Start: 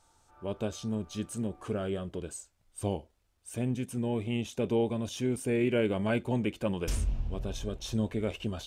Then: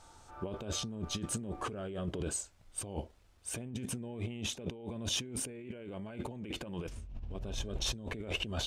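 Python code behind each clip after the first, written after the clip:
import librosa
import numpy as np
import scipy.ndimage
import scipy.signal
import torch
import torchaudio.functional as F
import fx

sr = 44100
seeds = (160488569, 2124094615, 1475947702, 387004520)

y = fx.high_shelf(x, sr, hz=10000.0, db=-10.0)
y = fx.over_compress(y, sr, threshold_db=-41.0, ratio=-1.0)
y = y * librosa.db_to_amplitude(1.0)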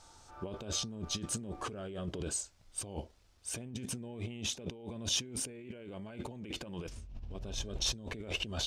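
y = fx.peak_eq(x, sr, hz=5200.0, db=6.5, octaves=1.1)
y = y * librosa.db_to_amplitude(-2.0)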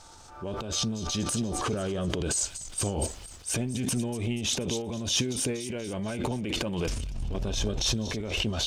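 y = fx.echo_wet_highpass(x, sr, ms=239, feedback_pct=50, hz=2700.0, wet_db=-15.5)
y = fx.rider(y, sr, range_db=3, speed_s=0.5)
y = fx.transient(y, sr, attack_db=-6, sustain_db=10)
y = y * librosa.db_to_amplitude(9.0)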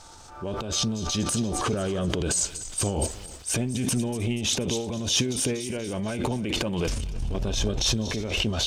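y = x + 10.0 ** (-20.5 / 20.0) * np.pad(x, (int(313 * sr / 1000.0), 0))[:len(x)]
y = y * librosa.db_to_amplitude(3.0)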